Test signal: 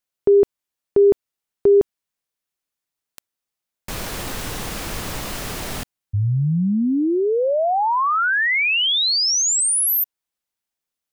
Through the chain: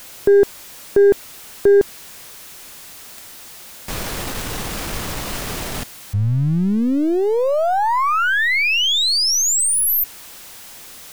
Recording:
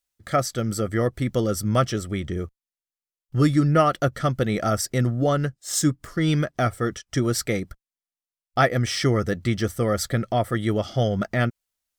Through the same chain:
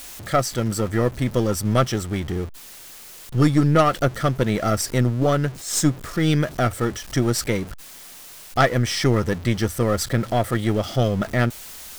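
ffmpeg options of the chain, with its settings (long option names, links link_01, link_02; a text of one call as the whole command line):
ffmpeg -i in.wav -af "aeval=exprs='val(0)+0.5*0.0266*sgn(val(0))':channel_layout=same,aeval=exprs='0.531*(cos(1*acos(clip(val(0)/0.531,-1,1)))-cos(1*PI/2))+0.211*(cos(2*acos(clip(val(0)/0.531,-1,1)))-cos(2*PI/2))+0.119*(cos(4*acos(clip(val(0)/0.531,-1,1)))-cos(4*PI/2))+0.0106*(cos(7*acos(clip(val(0)/0.531,-1,1)))-cos(7*PI/2))':channel_layout=same,volume=1dB" out.wav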